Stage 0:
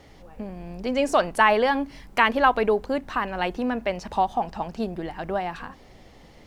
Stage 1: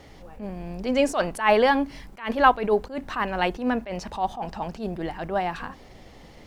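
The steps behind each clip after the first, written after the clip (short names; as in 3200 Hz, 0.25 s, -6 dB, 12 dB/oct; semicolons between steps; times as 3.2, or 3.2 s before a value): attack slew limiter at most 160 dB/s; gain +2.5 dB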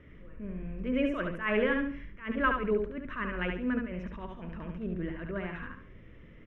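air absorption 310 m; fixed phaser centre 1900 Hz, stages 4; on a send: feedback echo 71 ms, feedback 30%, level -4.5 dB; on the sum: gain -3.5 dB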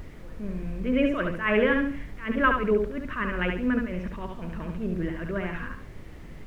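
added noise brown -47 dBFS; gain +5.5 dB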